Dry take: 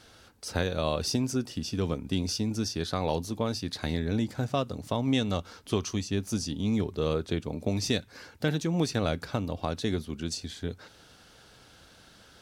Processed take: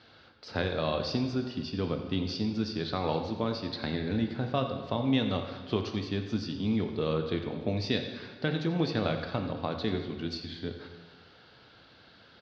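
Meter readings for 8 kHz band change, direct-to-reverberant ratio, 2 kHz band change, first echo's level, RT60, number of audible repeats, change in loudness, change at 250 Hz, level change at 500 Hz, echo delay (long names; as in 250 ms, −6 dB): below −15 dB, 5.0 dB, 0.0 dB, −14.0 dB, 1.5 s, 1, −1.0 dB, −0.5 dB, −0.5 dB, 89 ms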